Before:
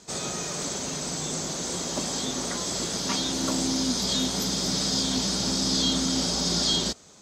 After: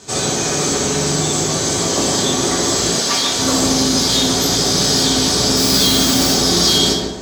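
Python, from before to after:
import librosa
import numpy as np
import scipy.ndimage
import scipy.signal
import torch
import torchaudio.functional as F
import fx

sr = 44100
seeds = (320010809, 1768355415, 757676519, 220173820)

p1 = fx.echo_filtered(x, sr, ms=146, feedback_pct=44, hz=1700.0, wet_db=-4)
p2 = fx.fold_sine(p1, sr, drive_db=8, ceiling_db=-12.0)
p3 = p1 + F.gain(torch.from_numpy(p2), -6.5).numpy()
p4 = fx.low_shelf(p3, sr, hz=440.0, db=-10.0, at=(2.98, 3.39))
p5 = fx.mod_noise(p4, sr, seeds[0], snr_db=11, at=(5.56, 6.32))
p6 = fx.rev_double_slope(p5, sr, seeds[1], early_s=0.48, late_s=1.7, knee_db=-27, drr_db=-3.5)
y = F.gain(torch.from_numpy(p6), -1.0).numpy()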